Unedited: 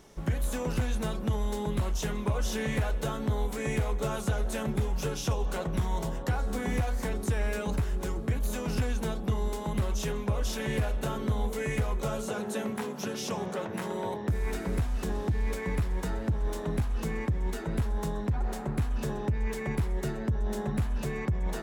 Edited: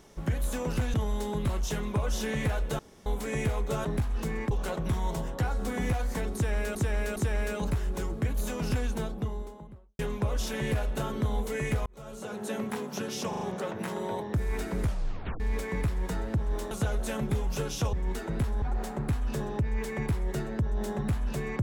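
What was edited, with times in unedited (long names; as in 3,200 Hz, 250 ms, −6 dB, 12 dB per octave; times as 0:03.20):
0:00.94–0:01.26: remove
0:03.11–0:03.38: fill with room tone
0:04.17–0:05.39: swap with 0:16.65–0:17.31
0:07.22–0:07.63: repeat, 3 plays
0:08.85–0:10.05: fade out and dull
0:11.92–0:12.66: fade in
0:13.35: stutter 0.04 s, 4 plays
0:14.75: tape stop 0.59 s
0:18.00–0:18.31: remove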